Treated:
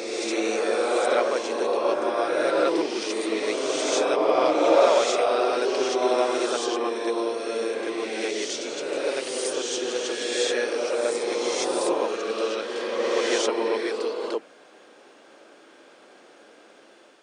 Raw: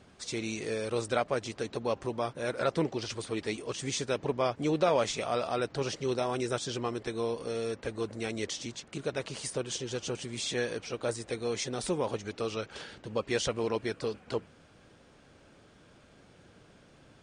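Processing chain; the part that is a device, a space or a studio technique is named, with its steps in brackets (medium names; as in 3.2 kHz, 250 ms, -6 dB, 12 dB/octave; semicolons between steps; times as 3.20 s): ghost voice (reverse; reverberation RT60 3.2 s, pre-delay 28 ms, DRR -3.5 dB; reverse; high-pass 320 Hz 24 dB/octave); trim +4 dB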